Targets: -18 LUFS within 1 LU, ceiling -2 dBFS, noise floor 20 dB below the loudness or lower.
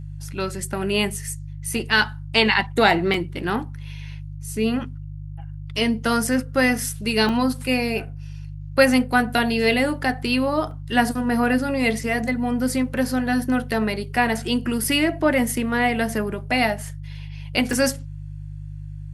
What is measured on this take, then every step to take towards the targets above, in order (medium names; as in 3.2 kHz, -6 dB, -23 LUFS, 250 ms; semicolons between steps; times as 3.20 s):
dropouts 5; longest dropout 2.5 ms; hum 50 Hz; highest harmonic 150 Hz; hum level -32 dBFS; loudness -22.0 LUFS; peak level -2.0 dBFS; loudness target -18.0 LUFS
-> interpolate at 3.14/7.29/10.71/14.84/17.73 s, 2.5 ms; de-hum 50 Hz, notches 3; trim +4 dB; peak limiter -2 dBFS